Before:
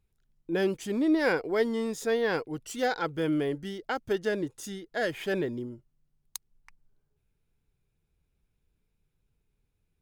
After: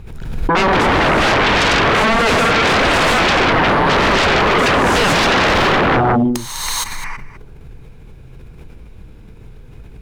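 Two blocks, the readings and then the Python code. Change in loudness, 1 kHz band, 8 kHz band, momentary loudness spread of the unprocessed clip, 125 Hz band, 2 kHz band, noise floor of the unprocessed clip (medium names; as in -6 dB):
+16.5 dB, +24.0 dB, +19.5 dB, 13 LU, +20.0 dB, +21.0 dB, -78 dBFS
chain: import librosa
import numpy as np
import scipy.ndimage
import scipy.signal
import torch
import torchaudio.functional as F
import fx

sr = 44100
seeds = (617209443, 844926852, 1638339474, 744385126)

p1 = x + fx.echo_single(x, sr, ms=202, db=-15.0, dry=0)
p2 = fx.rev_gated(p1, sr, seeds[0], gate_ms=490, shape='rising', drr_db=-5.0)
p3 = fx.over_compress(p2, sr, threshold_db=-30.0, ratio=-0.5)
p4 = p2 + F.gain(torch.from_numpy(p3), 0.5).numpy()
p5 = fx.high_shelf(p4, sr, hz=2700.0, db=-10.0)
p6 = fx.fold_sine(p5, sr, drive_db=16, ceiling_db=-10.0)
p7 = fx.high_shelf(p6, sr, hz=7900.0, db=-8.5)
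y = fx.pre_swell(p7, sr, db_per_s=43.0)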